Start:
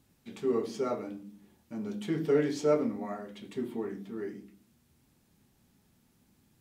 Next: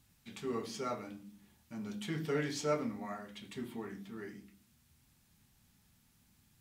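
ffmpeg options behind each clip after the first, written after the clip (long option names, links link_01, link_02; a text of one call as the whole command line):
ffmpeg -i in.wav -af "equalizer=frequency=390:width=0.64:gain=-12,volume=2dB" out.wav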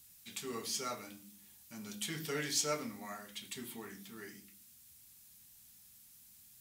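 ffmpeg -i in.wav -af "crystalizer=i=7:c=0,volume=-6dB" out.wav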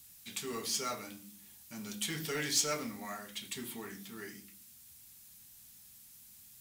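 ffmpeg -i in.wav -filter_complex "[0:a]acrossover=split=1400[link_01][link_02];[link_01]asoftclip=type=tanh:threshold=-36dB[link_03];[link_03][link_02]amix=inputs=2:normalize=0,acrusher=bits=5:mode=log:mix=0:aa=0.000001,volume=3.5dB" out.wav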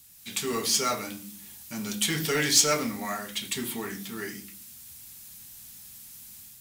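ffmpeg -i in.wav -af "dynaudnorm=framelen=110:gausssize=5:maxgain=7.5dB,volume=2.5dB" out.wav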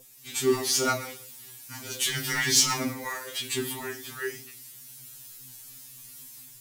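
ffmpeg -i in.wav -af "flanger=delay=15.5:depth=7.8:speed=2,aeval=exprs='val(0)+0.00355*sin(2*PI*480*n/s)':channel_layout=same,afftfilt=real='re*2.45*eq(mod(b,6),0)':imag='im*2.45*eq(mod(b,6),0)':win_size=2048:overlap=0.75,volume=6dB" out.wav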